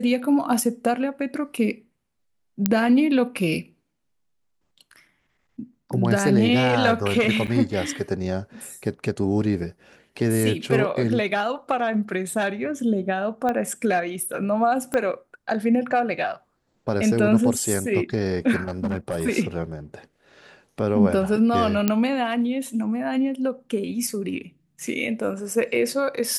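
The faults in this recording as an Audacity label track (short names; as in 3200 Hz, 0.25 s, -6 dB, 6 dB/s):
2.660000	2.660000	pop -4 dBFS
7.470000	7.480000	gap 7.1 ms
13.490000	13.490000	pop -14 dBFS
14.940000	14.940000	pop -12 dBFS
18.600000	19.260000	clipped -20.5 dBFS
21.880000	21.880000	pop -6 dBFS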